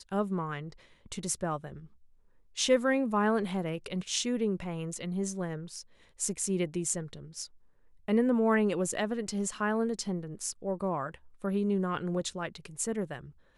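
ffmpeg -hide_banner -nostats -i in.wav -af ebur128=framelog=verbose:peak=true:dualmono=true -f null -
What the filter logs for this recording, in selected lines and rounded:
Integrated loudness:
  I:         -28.5 LUFS
  Threshold: -39.1 LUFS
Loudness range:
  LRA:         3.6 LU
  Threshold: -48.8 LUFS
  LRA low:   -31.0 LUFS
  LRA high:  -27.4 LUFS
True peak:
  Peak:      -13.2 dBFS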